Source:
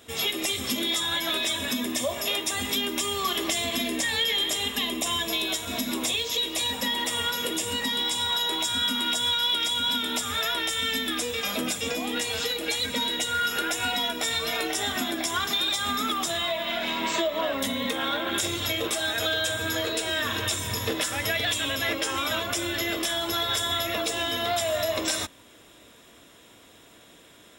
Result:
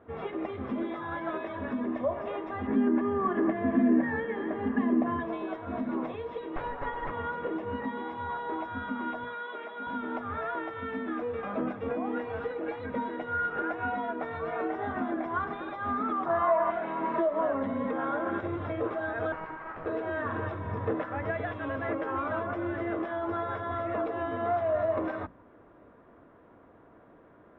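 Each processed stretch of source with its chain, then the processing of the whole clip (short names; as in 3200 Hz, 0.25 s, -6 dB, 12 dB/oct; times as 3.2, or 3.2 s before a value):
2.67–5.2 LPF 2300 Hz + small resonant body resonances 230/1700 Hz, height 12 dB, ringing for 25 ms
6.56–7.11 HPF 600 Hz + comb 7 ms, depth 85% + running maximum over 5 samples
9.24–9.87 BPF 320–3700 Hz + comb 4.7 ms, depth 61%
16.26–16.71 LPF 2100 Hz 6 dB/oct + bell 1100 Hz +12.5 dB 1.4 oct
19.32–19.86 HPF 1000 Hz 24 dB/oct + high shelf 2200 Hz -10.5 dB + Doppler distortion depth 0.54 ms
whole clip: LPF 1400 Hz 24 dB/oct; notches 60/120/180/240 Hz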